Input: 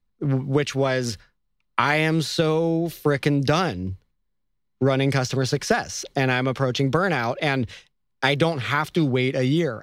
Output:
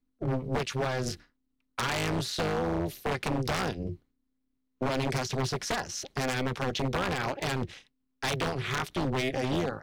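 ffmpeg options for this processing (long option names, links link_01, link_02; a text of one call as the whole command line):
ffmpeg -i in.wav -af "tremolo=f=260:d=0.974,aeval=exprs='0.106*(abs(mod(val(0)/0.106+3,4)-2)-1)':channel_layout=same,volume=-1.5dB" out.wav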